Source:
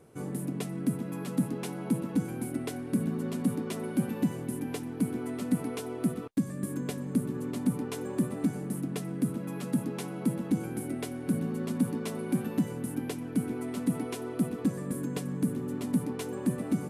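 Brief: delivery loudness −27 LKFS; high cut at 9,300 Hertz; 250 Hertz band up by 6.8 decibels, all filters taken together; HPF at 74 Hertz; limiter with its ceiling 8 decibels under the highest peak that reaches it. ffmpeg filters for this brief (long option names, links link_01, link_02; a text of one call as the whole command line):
ffmpeg -i in.wav -af "highpass=74,lowpass=9300,equalizer=frequency=250:width_type=o:gain=8,volume=2dB,alimiter=limit=-15dB:level=0:latency=1" out.wav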